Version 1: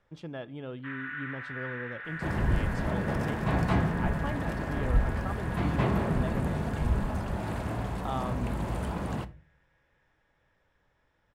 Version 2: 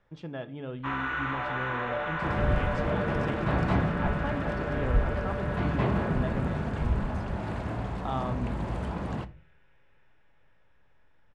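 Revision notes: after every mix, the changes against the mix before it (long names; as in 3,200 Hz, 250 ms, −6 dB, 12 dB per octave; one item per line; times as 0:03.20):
speech: send +9.0 dB
first sound: remove four-pole ladder band-pass 1,900 Hz, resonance 70%
master: add high-frequency loss of the air 78 metres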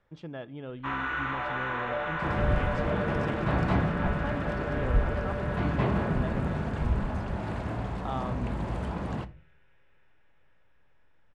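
speech: send −10.0 dB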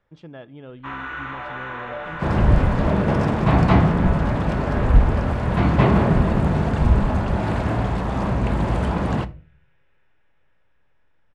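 second sound +11.0 dB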